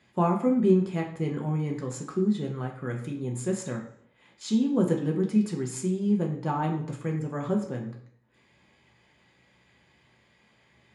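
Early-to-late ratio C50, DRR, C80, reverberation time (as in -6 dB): 8.0 dB, -1.0 dB, 11.0 dB, 0.65 s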